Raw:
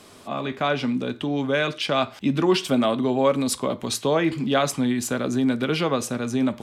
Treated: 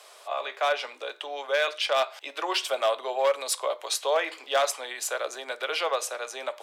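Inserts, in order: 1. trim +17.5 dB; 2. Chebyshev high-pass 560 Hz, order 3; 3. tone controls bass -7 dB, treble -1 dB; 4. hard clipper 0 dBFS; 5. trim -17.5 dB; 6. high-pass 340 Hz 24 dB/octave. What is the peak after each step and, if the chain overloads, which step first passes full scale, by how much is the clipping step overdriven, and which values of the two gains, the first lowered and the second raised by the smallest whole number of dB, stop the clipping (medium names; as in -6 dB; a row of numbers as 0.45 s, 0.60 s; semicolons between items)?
+8.5 dBFS, +7.0 dBFS, +6.5 dBFS, 0.0 dBFS, -17.5 dBFS, -12.0 dBFS; step 1, 6.5 dB; step 1 +10.5 dB, step 5 -10.5 dB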